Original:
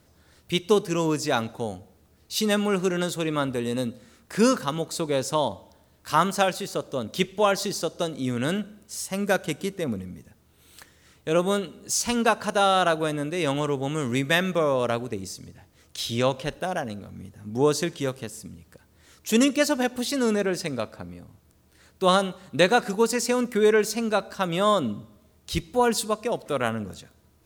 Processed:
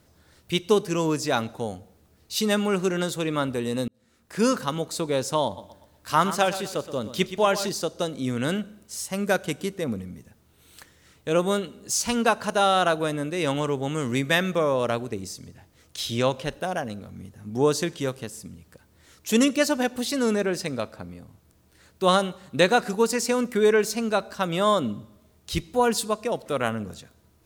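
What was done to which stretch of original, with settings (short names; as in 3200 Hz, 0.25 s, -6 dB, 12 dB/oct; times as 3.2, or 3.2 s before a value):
3.88–4.6 fade in
5.45–7.69 feedback echo 0.122 s, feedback 37%, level -12.5 dB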